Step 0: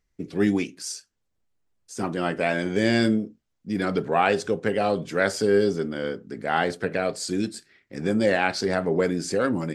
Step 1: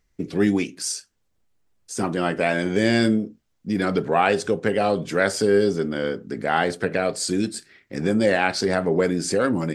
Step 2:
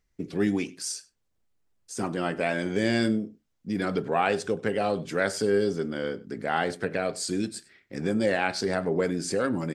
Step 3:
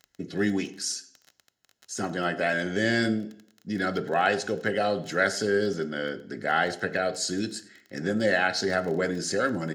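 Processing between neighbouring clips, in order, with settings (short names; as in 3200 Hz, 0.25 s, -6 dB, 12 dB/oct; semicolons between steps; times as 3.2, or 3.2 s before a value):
dynamic EQ 8800 Hz, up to +4 dB, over -56 dBFS, Q 4.8; in parallel at 0 dB: compressor, threshold -30 dBFS, peak gain reduction 14 dB
echo 98 ms -23 dB; gain -5.5 dB
crackle 19/s -35 dBFS; notch comb 1200 Hz; reverb RT60 0.70 s, pre-delay 3 ms, DRR 15 dB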